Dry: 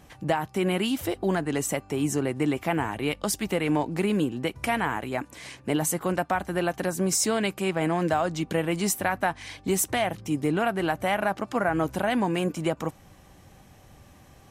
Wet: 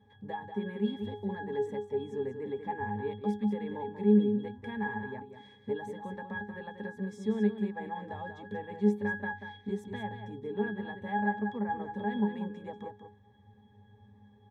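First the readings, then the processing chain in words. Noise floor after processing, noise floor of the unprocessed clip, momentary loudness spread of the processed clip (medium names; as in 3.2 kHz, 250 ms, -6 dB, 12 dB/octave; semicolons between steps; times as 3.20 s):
-60 dBFS, -53 dBFS, 12 LU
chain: high-pass 150 Hz 6 dB/octave; pitch-class resonator G#, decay 0.27 s; delay 188 ms -8.5 dB; trim +8 dB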